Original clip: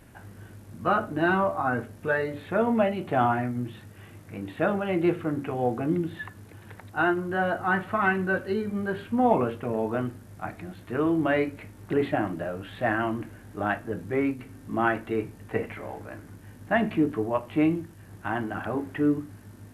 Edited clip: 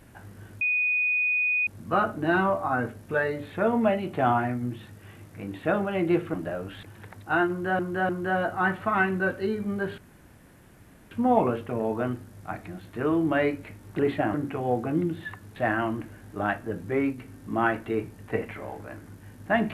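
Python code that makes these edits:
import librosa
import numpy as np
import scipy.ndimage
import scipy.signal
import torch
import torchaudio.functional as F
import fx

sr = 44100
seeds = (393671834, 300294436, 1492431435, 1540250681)

y = fx.edit(x, sr, fx.insert_tone(at_s=0.61, length_s=1.06, hz=2480.0, db=-21.5),
    fx.swap(start_s=5.28, length_s=1.22, other_s=12.28, other_length_s=0.49),
    fx.repeat(start_s=7.16, length_s=0.3, count=3),
    fx.insert_room_tone(at_s=9.05, length_s=1.13), tone=tone)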